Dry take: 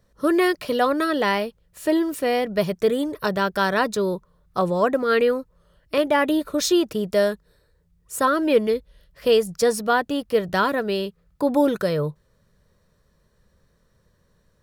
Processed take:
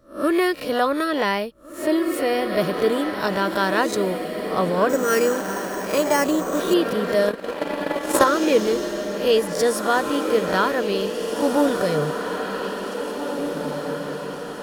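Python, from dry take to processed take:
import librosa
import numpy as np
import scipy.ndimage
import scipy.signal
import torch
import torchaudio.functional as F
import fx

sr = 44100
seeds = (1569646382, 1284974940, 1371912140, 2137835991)

y = fx.spec_swells(x, sr, rise_s=0.33)
y = fx.echo_diffused(y, sr, ms=1913, feedback_pct=55, wet_db=-6.0)
y = fx.resample_bad(y, sr, factor=6, down='filtered', up='hold', at=(4.89, 6.74))
y = fx.transient(y, sr, attack_db=12, sustain_db=-11, at=(7.27, 8.24))
y = y * 10.0 ** (-1.0 / 20.0)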